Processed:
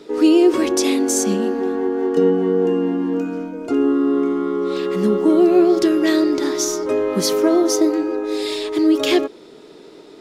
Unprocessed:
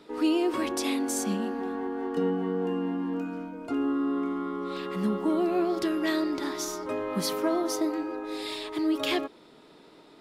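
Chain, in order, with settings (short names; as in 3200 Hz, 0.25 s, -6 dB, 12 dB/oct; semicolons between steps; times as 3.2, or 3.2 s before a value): fifteen-band EQ 400 Hz +9 dB, 1000 Hz -3 dB, 6300 Hz +7 dB; gain +7 dB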